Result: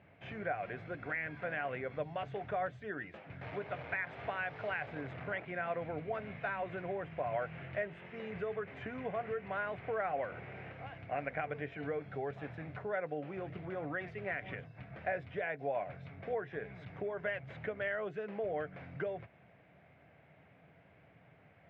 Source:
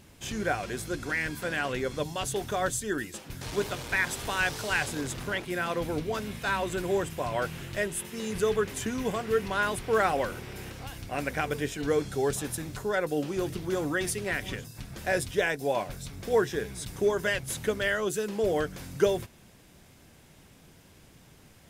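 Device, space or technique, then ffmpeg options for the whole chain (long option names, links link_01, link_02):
bass amplifier: -af "acompressor=threshold=-30dB:ratio=4,highpass=frequency=88:width=0.5412,highpass=frequency=88:width=1.3066,equalizer=frequency=100:width_type=q:width=4:gain=-3,equalizer=frequency=230:width_type=q:width=4:gain=-8,equalizer=frequency=350:width_type=q:width=4:gain=-7,equalizer=frequency=670:width_type=q:width=4:gain=8,equalizer=frequency=1000:width_type=q:width=4:gain=-4,equalizer=frequency=2200:width_type=q:width=4:gain=5,lowpass=frequency=2300:width=0.5412,lowpass=frequency=2300:width=1.3066,volume=-4.5dB"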